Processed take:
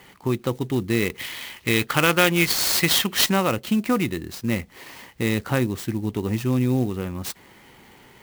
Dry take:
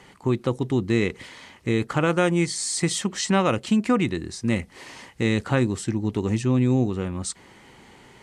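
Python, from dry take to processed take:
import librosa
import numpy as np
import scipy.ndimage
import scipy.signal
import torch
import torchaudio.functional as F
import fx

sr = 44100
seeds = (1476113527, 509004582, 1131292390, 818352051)

y = fx.peak_eq(x, sr, hz=3200.0, db=fx.steps((0.0, 4.5), (1.18, 14.0), (3.26, 2.5)), octaves=2.2)
y = fx.clock_jitter(y, sr, seeds[0], jitter_ms=0.028)
y = F.gain(torch.from_numpy(y), -1.0).numpy()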